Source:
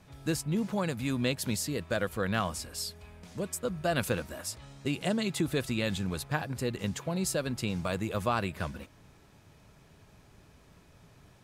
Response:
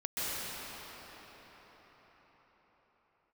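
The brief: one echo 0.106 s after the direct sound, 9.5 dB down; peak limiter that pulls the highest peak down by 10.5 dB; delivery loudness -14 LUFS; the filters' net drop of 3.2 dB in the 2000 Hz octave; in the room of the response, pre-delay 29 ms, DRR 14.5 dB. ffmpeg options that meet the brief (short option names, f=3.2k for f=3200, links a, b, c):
-filter_complex "[0:a]equalizer=f=2k:t=o:g=-4.5,alimiter=level_in=3dB:limit=-24dB:level=0:latency=1,volume=-3dB,aecho=1:1:106:0.335,asplit=2[a][b];[1:a]atrim=start_sample=2205,adelay=29[c];[b][c]afir=irnorm=-1:irlink=0,volume=-22.5dB[d];[a][d]amix=inputs=2:normalize=0,volume=22.5dB"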